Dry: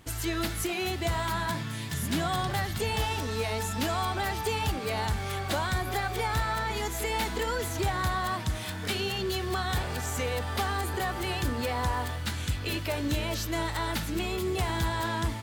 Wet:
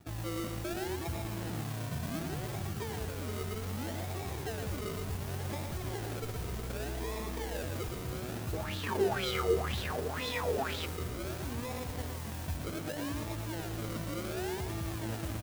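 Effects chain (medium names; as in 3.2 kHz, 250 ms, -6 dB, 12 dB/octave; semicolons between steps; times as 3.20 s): median filter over 41 samples; high-pass 59 Hz 24 dB/octave; hum notches 50/100 Hz; peak limiter -31 dBFS, peak gain reduction 11.5 dB; decimation with a swept rate 41×, swing 60% 0.66 Hz; modulation noise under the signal 14 dB; delay 116 ms -5.5 dB; 8.53–10.86 s: sweeping bell 2 Hz 420–3800 Hz +18 dB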